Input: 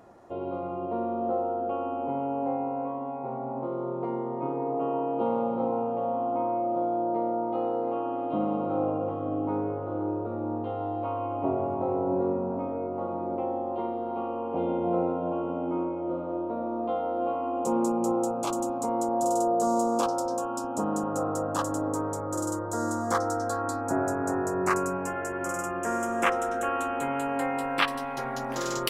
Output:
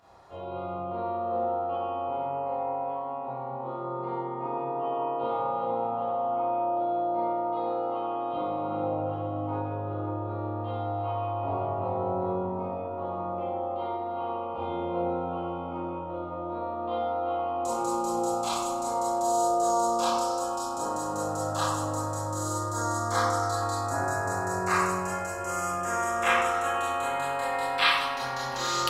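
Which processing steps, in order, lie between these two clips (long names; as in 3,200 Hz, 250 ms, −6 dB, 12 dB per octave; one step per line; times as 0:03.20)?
octave-band graphic EQ 250/500/1,000/4,000 Hz −12/−6/+3/+9 dB
convolution reverb RT60 1.0 s, pre-delay 21 ms, DRR −8.5 dB
level −7 dB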